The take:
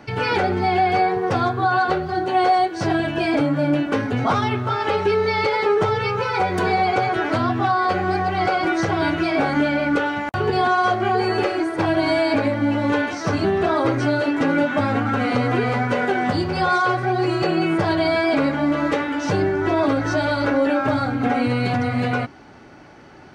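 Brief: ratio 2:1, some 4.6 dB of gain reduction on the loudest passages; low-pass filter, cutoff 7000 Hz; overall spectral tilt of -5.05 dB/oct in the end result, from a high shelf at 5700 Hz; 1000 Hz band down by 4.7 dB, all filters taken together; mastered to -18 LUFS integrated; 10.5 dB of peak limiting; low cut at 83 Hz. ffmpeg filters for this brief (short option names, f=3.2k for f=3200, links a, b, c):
-af "highpass=83,lowpass=7k,equalizer=f=1k:t=o:g=-7,highshelf=f=5.7k:g=-7.5,acompressor=threshold=-25dB:ratio=2,volume=13dB,alimiter=limit=-10.5dB:level=0:latency=1"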